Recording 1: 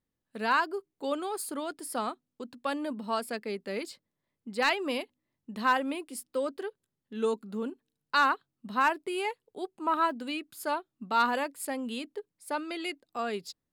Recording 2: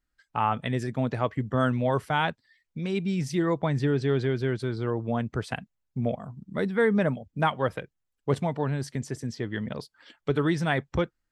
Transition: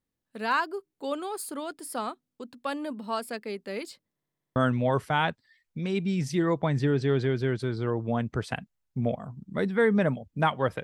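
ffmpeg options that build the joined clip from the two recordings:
ffmpeg -i cue0.wav -i cue1.wav -filter_complex "[0:a]apad=whole_dur=10.83,atrim=end=10.83,asplit=7[link_01][link_02][link_03][link_04][link_05][link_06][link_07];[link_01]atrim=end=4.202[link_08];[link_02]atrim=start=4.138:end=4.202[link_09];[link_03]atrim=start=4.138:end=4.202[link_10];[link_04]atrim=start=4.138:end=4.202[link_11];[link_05]atrim=start=4.138:end=4.202[link_12];[link_06]atrim=start=4.138:end=4.202[link_13];[link_07]atrim=start=4.138:end=4.202[link_14];[1:a]atrim=start=1.558:end=7.83[link_15];[link_08][link_09]acrossfade=duration=0.004:curve1=hsin:curve2=hsin[link_16];[link_16][link_10]acrossfade=duration=0.004:curve1=hsin:curve2=hsin[link_17];[link_17][link_11]acrossfade=duration=0.004:curve1=hsin:curve2=hsin[link_18];[link_18][link_12]acrossfade=duration=0.004:curve1=hsin:curve2=hsin[link_19];[link_19][link_13]acrossfade=duration=0.004:curve1=hsin:curve2=hsin[link_20];[link_20][link_14]acrossfade=duration=0.004:curve1=hsin:curve2=hsin[link_21];[link_21][link_15]acrossfade=duration=0.004:curve1=hsin:curve2=hsin" out.wav

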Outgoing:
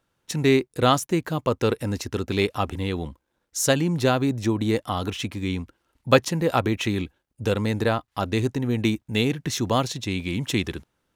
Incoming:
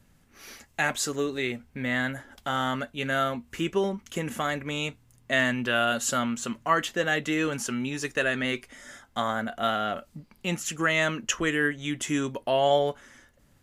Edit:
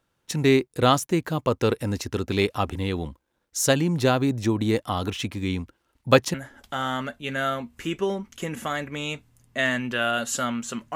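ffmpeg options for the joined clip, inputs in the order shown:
ffmpeg -i cue0.wav -i cue1.wav -filter_complex "[0:a]apad=whole_dur=10.95,atrim=end=10.95,atrim=end=6.342[link_01];[1:a]atrim=start=2.078:end=6.69[link_02];[link_01][link_02]acrossfade=duration=0.004:curve1=hsin:curve2=hsin" out.wav

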